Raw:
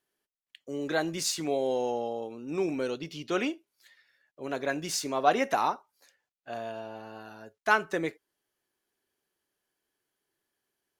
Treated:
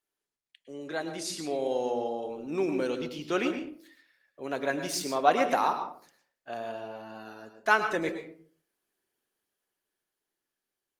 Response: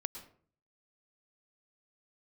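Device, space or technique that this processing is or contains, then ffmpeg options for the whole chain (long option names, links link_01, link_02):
far-field microphone of a smart speaker: -filter_complex "[1:a]atrim=start_sample=2205[link_01];[0:a][link_01]afir=irnorm=-1:irlink=0,highpass=frequency=160:poles=1,dynaudnorm=framelen=300:gausssize=11:maxgain=7.5dB,volume=-4.5dB" -ar 48000 -c:a libopus -b:a 32k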